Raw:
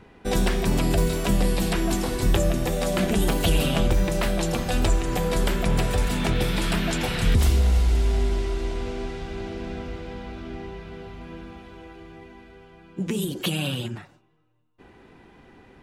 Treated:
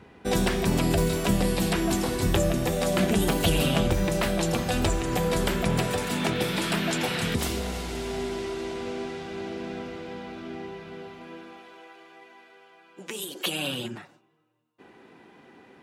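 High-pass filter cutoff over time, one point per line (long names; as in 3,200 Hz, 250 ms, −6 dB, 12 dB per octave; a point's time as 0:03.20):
0:05.59 65 Hz
0:06.01 170 Hz
0:10.93 170 Hz
0:11.90 600 Hz
0:13.28 600 Hz
0:13.83 190 Hz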